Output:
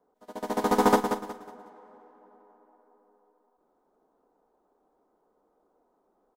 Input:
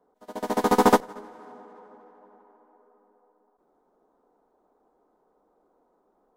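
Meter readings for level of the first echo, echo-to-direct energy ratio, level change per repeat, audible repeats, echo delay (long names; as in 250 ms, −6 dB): −8.0 dB, −7.5 dB, −10.5 dB, 3, 183 ms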